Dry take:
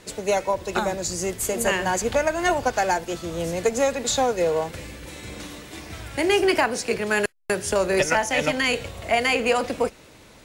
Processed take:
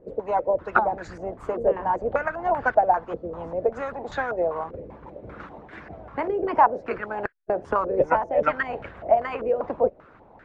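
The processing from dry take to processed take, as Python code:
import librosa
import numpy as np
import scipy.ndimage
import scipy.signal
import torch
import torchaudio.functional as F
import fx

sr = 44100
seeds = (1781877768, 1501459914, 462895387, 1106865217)

y = fx.hpss(x, sr, part='harmonic', gain_db=-13)
y = fx.filter_held_lowpass(y, sr, hz=5.1, low_hz=500.0, high_hz=1600.0)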